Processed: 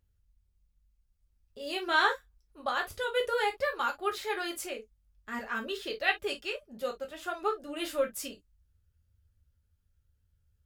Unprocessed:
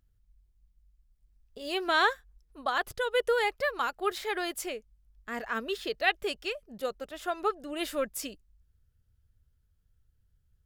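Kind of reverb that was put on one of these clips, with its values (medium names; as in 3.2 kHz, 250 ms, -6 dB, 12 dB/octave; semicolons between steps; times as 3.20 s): gated-style reverb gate 80 ms falling, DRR 0.5 dB; trim -4 dB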